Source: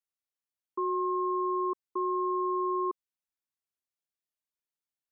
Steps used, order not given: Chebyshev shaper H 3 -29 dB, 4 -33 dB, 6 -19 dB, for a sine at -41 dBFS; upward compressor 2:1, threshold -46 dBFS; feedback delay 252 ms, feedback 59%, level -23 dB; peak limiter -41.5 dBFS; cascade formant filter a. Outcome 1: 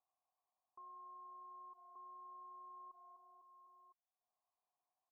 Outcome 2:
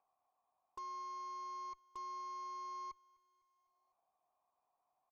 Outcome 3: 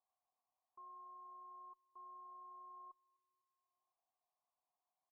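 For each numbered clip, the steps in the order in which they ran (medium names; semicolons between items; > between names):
feedback delay > peak limiter > Chebyshev shaper > upward compressor > cascade formant filter; cascade formant filter > peak limiter > upward compressor > Chebyshev shaper > feedback delay; upward compressor > peak limiter > feedback delay > Chebyshev shaper > cascade formant filter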